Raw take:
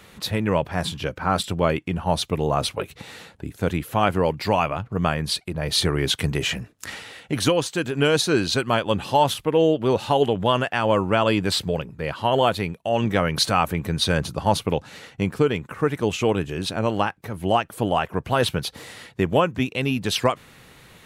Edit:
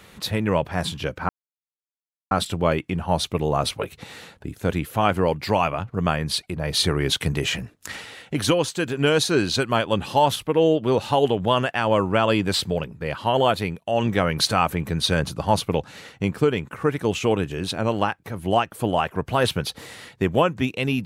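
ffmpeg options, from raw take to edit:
ffmpeg -i in.wav -filter_complex "[0:a]asplit=2[link_01][link_02];[link_01]atrim=end=1.29,asetpts=PTS-STARTPTS,afade=type=out:start_time=1.286:duration=0.004:curve=hsin,apad=pad_dur=1.02[link_03];[link_02]atrim=start=1.29,asetpts=PTS-STARTPTS,afade=type=in:duration=0.004:curve=hsin[link_04];[link_03][link_04]concat=n=2:v=0:a=1" out.wav

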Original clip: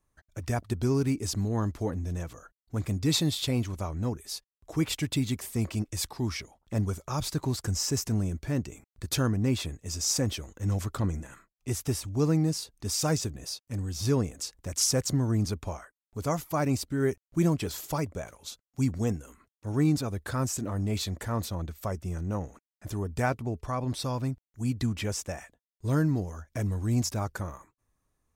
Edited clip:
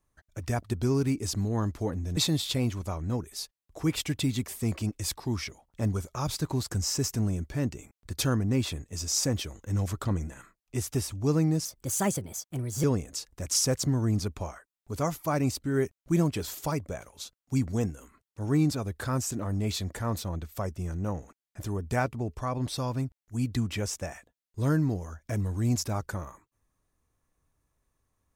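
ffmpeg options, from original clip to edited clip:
ffmpeg -i in.wav -filter_complex "[0:a]asplit=4[link_01][link_02][link_03][link_04];[link_01]atrim=end=2.172[link_05];[link_02]atrim=start=3.098:end=12.584[link_06];[link_03]atrim=start=12.58:end=14.1,asetpts=PTS-STARTPTS,asetrate=56448,aresample=44100[link_07];[link_04]atrim=start=14.096[link_08];[link_05][link_06]acrossfade=duration=0.004:curve1=hsin:curve2=hsin[link_09];[link_09][link_07]acrossfade=duration=0.004:curve1=hsin:curve2=hsin[link_10];[link_10][link_08]acrossfade=duration=0.004:curve1=hsin:curve2=hsin" out.wav

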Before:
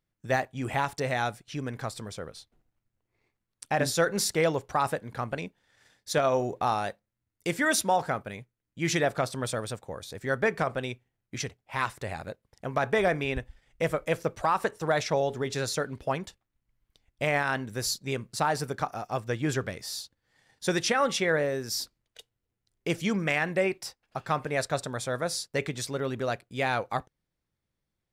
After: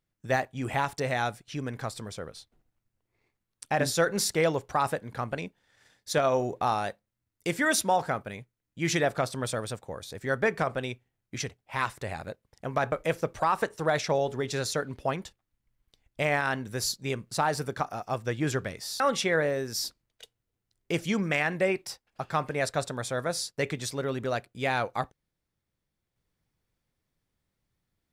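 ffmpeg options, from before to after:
ffmpeg -i in.wav -filter_complex "[0:a]asplit=3[link_01][link_02][link_03];[link_01]atrim=end=12.922[link_04];[link_02]atrim=start=13.938:end=20.022[link_05];[link_03]atrim=start=20.958[link_06];[link_04][link_05]acrossfade=duration=0.004:curve1=hsin:curve2=hsin[link_07];[link_07][link_06]acrossfade=duration=0.004:curve1=hsin:curve2=hsin" out.wav

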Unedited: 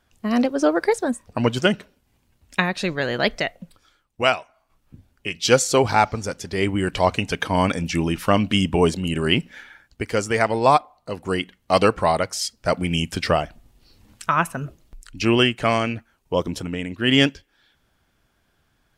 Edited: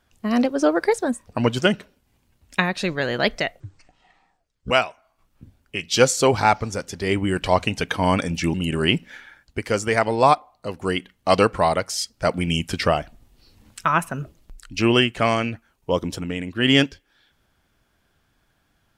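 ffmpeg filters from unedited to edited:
ffmpeg -i in.wav -filter_complex "[0:a]asplit=4[link_01][link_02][link_03][link_04];[link_01]atrim=end=3.604[link_05];[link_02]atrim=start=3.6:end=4.22,asetpts=PTS-STARTPTS,asetrate=24696,aresample=44100[link_06];[link_03]atrim=start=4.216:end=8.052[link_07];[link_04]atrim=start=8.968[link_08];[link_05][link_06]acrossfade=duration=0.004:curve1=hsin:curve2=hsin[link_09];[link_09][link_07]acrossfade=duration=0.004:curve1=hsin:curve2=hsin[link_10];[link_10][link_08]acrossfade=duration=0.004:curve1=hsin:curve2=hsin" out.wav

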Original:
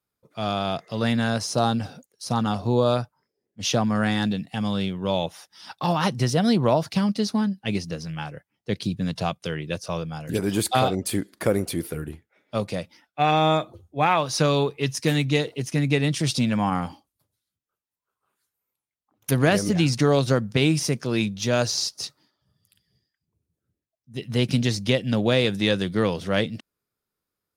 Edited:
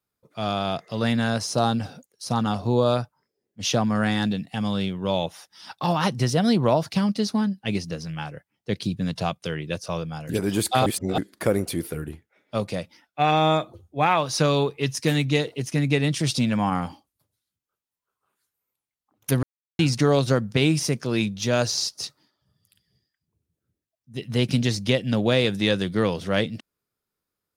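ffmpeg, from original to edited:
ffmpeg -i in.wav -filter_complex "[0:a]asplit=5[link_01][link_02][link_03][link_04][link_05];[link_01]atrim=end=10.862[link_06];[link_02]atrim=start=10.858:end=11.182,asetpts=PTS-STARTPTS,areverse[link_07];[link_03]atrim=start=11.178:end=19.43,asetpts=PTS-STARTPTS,afade=type=out:start_time=8.248:duration=0.004:curve=hsin[link_08];[link_04]atrim=start=19.43:end=19.79,asetpts=PTS-STARTPTS,volume=0[link_09];[link_05]atrim=start=19.79,asetpts=PTS-STARTPTS,afade=type=in:duration=0.004:curve=hsin[link_10];[link_06][link_07]acrossfade=duration=0.004:curve1=hsin:curve2=hsin[link_11];[link_08][link_09][link_10]concat=n=3:v=0:a=1[link_12];[link_11][link_12]acrossfade=duration=0.004:curve1=hsin:curve2=hsin" out.wav

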